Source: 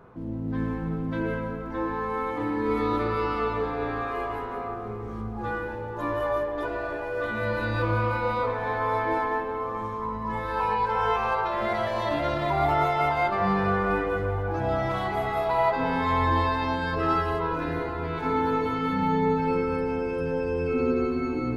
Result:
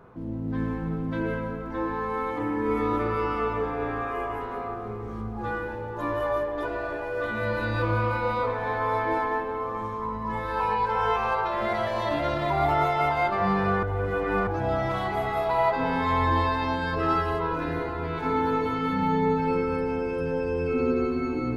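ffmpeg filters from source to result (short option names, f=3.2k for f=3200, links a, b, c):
-filter_complex "[0:a]asettb=1/sr,asplit=3[a][b][c];[a]atrim=end=2.394[d];[b]atrim=start=2.39:end=4.41,asetpts=PTS-STARTPTS,afade=t=in:d=0.004:c=qsin,afade=t=out:st=2.016:d=0.004:c=qsin,equalizer=f=4.1k:t=o:w=0.34:g=-12.5[e];[c]atrim=start=4.406[f];[d][e]acrossfade=d=0.004:c1=hsin:c2=qsin[g];[g][f]acrossfade=d=0.004:c1=qsin:c2=hsin,asplit=3[h][i][j];[h]atrim=end=13.832[k];[i]atrim=start=13.828:end=14.472,asetpts=PTS-STARTPTS,areverse[l];[j]atrim=start=14.468[m];[k][l]acrossfade=d=0.004:c1=hsin:c2=hsin[n];[n][m]acrossfade=d=0.004:c1=hsin:c2=hsin"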